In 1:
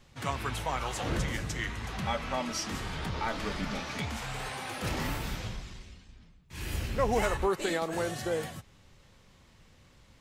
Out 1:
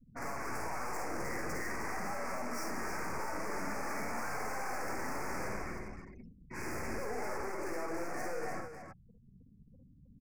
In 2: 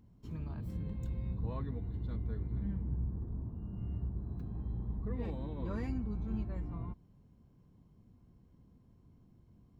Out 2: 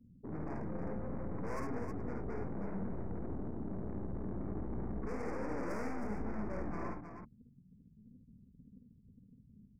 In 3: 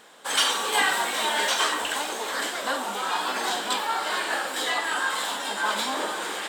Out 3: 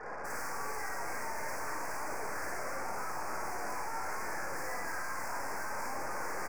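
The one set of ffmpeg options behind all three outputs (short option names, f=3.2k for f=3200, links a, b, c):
-filter_complex "[0:a]afftfilt=real='re*gte(hypot(re,im),0.00447)':imag='im*gte(hypot(re,im),0.00447)':win_size=1024:overlap=0.75,acrossover=split=250 2200:gain=0.112 1 0.2[a][b][c];[a][b][c]amix=inputs=3:normalize=0,acompressor=threshold=-37dB:ratio=6,aeval=exprs='(tanh(794*val(0)+0.6)-tanh(0.6))/794':c=same,asuperstop=centerf=3400:order=8:qfactor=1.3,aecho=1:1:52|73|315:0.631|0.398|0.447,volume=17.5dB"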